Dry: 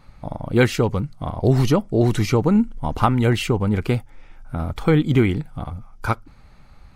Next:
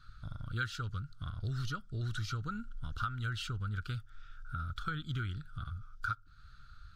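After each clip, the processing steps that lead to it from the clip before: FFT filter 110 Hz 0 dB, 210 Hz -14 dB, 910 Hz -25 dB, 1.4 kHz +13 dB, 2.1 kHz -14 dB, 3.5 kHz +5 dB, 11 kHz -8 dB; compression 2.5:1, threshold -32 dBFS, peak gain reduction 13 dB; trim -6 dB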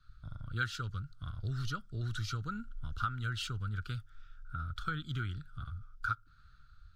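three bands expanded up and down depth 40%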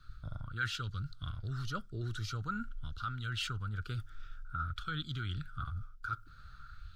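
reverse; compression 5:1, threshold -44 dBFS, peak gain reduction 15 dB; reverse; sweeping bell 0.49 Hz 350–4300 Hz +8 dB; trim +7.5 dB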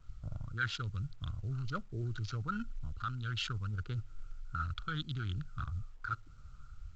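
local Wiener filter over 25 samples; trim +1 dB; A-law 128 kbps 16 kHz

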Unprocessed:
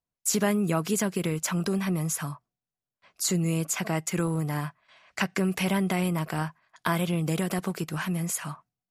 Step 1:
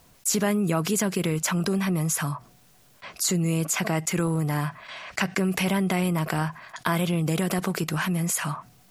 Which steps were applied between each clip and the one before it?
level flattener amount 50%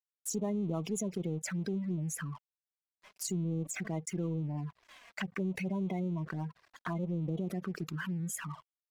spectral gate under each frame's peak -15 dB strong; crossover distortion -42.5 dBFS; touch-sensitive flanger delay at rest 6.2 ms, full sweep at -22.5 dBFS; trim -8 dB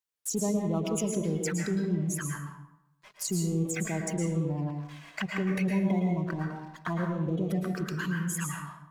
plate-style reverb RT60 0.84 s, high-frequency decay 0.6×, pre-delay 100 ms, DRR 1 dB; trim +4 dB

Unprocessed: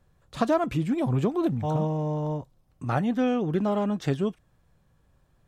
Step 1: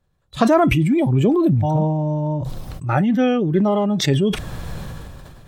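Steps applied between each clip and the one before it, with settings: spectral noise reduction 13 dB; peaking EQ 3.9 kHz +4 dB 0.64 oct; decay stretcher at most 23 dB/s; trim +7.5 dB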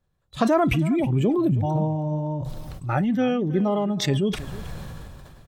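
delay 319 ms -17.5 dB; trim -5 dB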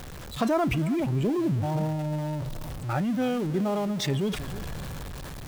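jump at every zero crossing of -28 dBFS; trim -6 dB

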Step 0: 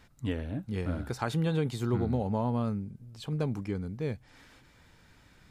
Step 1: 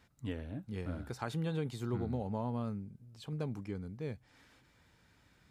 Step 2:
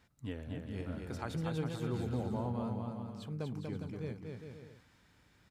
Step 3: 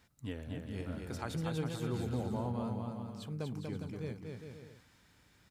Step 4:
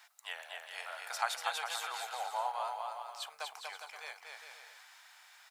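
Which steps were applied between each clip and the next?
high-pass 45 Hz; trim -7 dB
bouncing-ball echo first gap 240 ms, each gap 0.7×, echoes 5; trim -2 dB
treble shelf 4.5 kHz +6 dB
elliptic high-pass 720 Hz, stop band 60 dB; trim +10.5 dB

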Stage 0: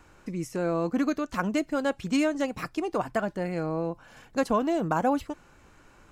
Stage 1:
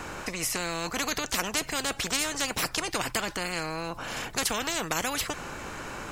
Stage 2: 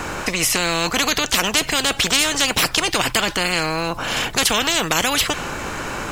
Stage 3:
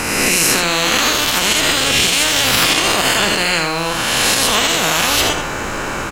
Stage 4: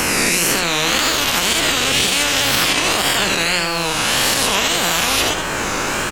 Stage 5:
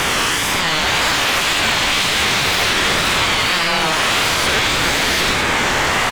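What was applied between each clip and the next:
spectrum-flattening compressor 4:1
dynamic bell 3.2 kHz, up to +6 dB, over -46 dBFS, Q 2; in parallel at -2.5 dB: peak limiter -19 dBFS, peak gain reduction 9.5 dB; on the sum: short-mantissa float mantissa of 4-bit; trim +6 dB
reverse spectral sustain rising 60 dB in 1.72 s; peak limiter -4.5 dBFS, peak gain reduction 9.5 dB; on a send: delay 80 ms -6.5 dB; on the sum: trim +1 dB
wow and flutter 120 cents; three bands compressed up and down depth 70%; trim -2.5 dB
overdrive pedal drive 23 dB, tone 2.5 kHz, clips at -1 dBFS; delay 955 ms -8 dB; ring modulator with a swept carrier 520 Hz, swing 40%, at 0.39 Hz; trim -2.5 dB

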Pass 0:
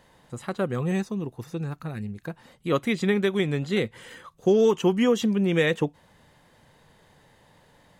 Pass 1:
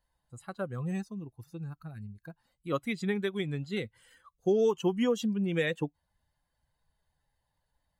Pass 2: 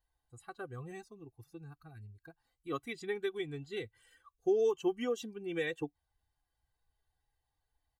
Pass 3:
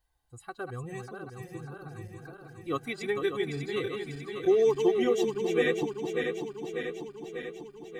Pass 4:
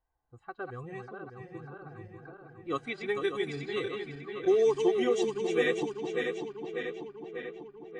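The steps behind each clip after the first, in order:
expander on every frequency bin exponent 1.5; trim -5 dB
comb 2.6 ms, depth 81%; trim -7.5 dB
backward echo that repeats 297 ms, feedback 80%, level -6 dB; trim +6 dB
level-controlled noise filter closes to 1.2 kHz, open at -25 dBFS; bass shelf 200 Hz -7 dB; AAC 48 kbps 22.05 kHz

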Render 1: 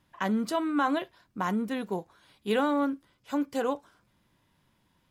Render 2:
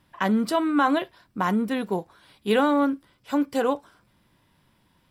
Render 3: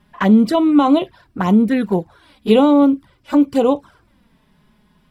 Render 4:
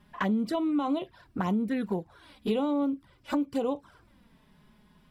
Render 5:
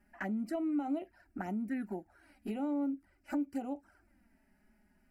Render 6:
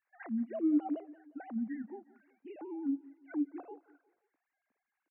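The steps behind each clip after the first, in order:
band-stop 6.6 kHz, Q 7.1; trim +5.5 dB
treble shelf 4.4 kHz -5.5 dB; touch-sensitive flanger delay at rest 4.9 ms, full sweep at -20.5 dBFS; bass shelf 270 Hz +5.5 dB; trim +8.5 dB
compression 3:1, threshold -25 dBFS, peak gain reduction 13 dB; trim -4 dB
static phaser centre 710 Hz, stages 8; trim -5.5 dB
formants replaced by sine waves; feedback delay 177 ms, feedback 47%, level -21 dB

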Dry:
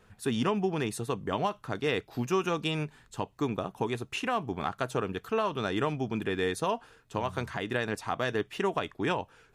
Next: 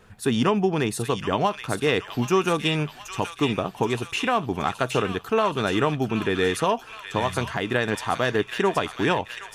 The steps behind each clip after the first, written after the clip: feedback echo behind a high-pass 774 ms, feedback 56%, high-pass 1.8 kHz, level -5 dB; trim +7 dB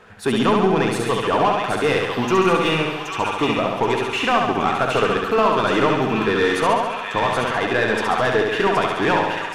overdrive pedal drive 17 dB, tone 1.7 kHz, clips at -9 dBFS; flutter echo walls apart 11.8 m, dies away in 1.1 s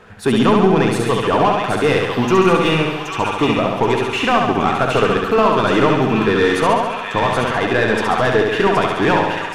bass shelf 310 Hz +5 dB; trim +2 dB

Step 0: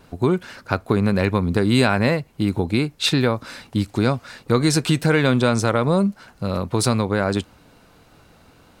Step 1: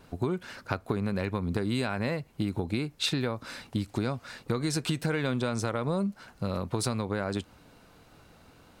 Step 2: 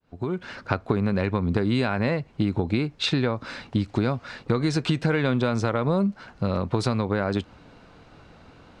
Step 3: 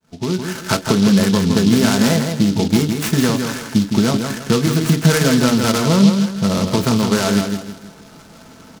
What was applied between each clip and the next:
compression, threshold -21 dBFS, peak gain reduction 9.5 dB; trim -4.5 dB
fade-in on the opening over 0.50 s; distance through air 120 m; trim +6.5 dB
feedback delay 162 ms, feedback 35%, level -6 dB; reverberation RT60 0.15 s, pre-delay 3 ms, DRR 3.5 dB; delay time shaken by noise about 4 kHz, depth 0.091 ms

